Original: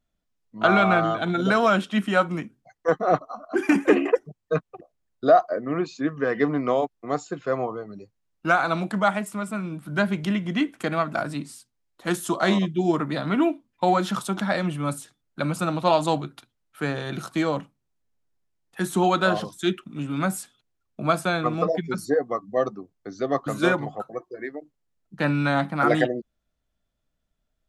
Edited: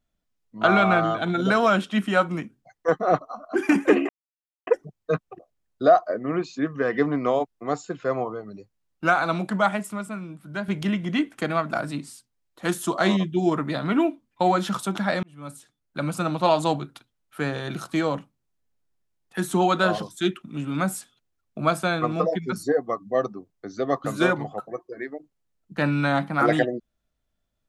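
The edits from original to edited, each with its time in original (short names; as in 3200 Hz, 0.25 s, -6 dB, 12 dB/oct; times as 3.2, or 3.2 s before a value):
4.09 insert silence 0.58 s
9.28–10.1 fade out quadratic, to -8 dB
14.65–15.9 fade in equal-power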